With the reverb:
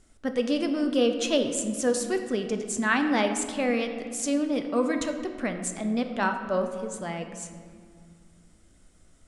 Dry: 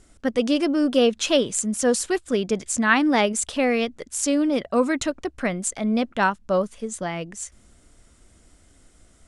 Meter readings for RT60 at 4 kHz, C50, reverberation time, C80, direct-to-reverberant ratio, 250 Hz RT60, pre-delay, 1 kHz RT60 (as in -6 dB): 1.2 s, 7.5 dB, 2.1 s, 8.5 dB, 5.5 dB, 3.2 s, 4 ms, 2.0 s